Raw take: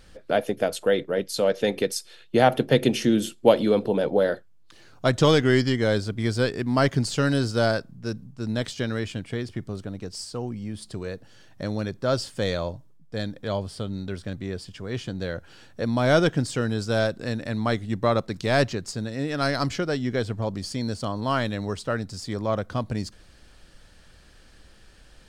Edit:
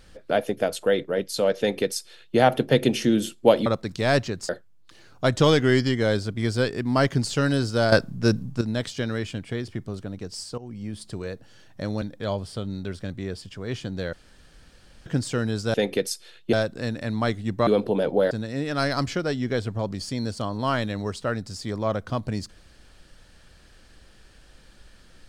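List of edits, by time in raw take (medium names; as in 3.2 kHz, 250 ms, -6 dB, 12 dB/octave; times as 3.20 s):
1.59–2.38 s: copy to 16.97 s
3.66–4.30 s: swap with 18.11–18.94 s
7.73–8.42 s: gain +10 dB
10.39–10.66 s: fade in, from -15.5 dB
11.83–13.25 s: delete
15.36–16.29 s: room tone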